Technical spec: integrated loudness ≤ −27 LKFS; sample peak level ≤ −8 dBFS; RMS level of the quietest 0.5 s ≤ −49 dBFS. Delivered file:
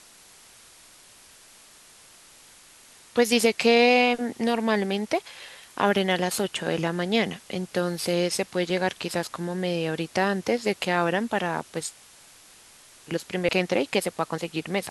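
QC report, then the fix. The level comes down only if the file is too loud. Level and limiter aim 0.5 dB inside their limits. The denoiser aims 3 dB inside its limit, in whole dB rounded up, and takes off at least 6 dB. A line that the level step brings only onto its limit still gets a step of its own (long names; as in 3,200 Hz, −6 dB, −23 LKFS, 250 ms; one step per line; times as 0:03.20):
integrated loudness −25.0 LKFS: out of spec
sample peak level −7.0 dBFS: out of spec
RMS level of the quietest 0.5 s −52 dBFS: in spec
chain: level −2.5 dB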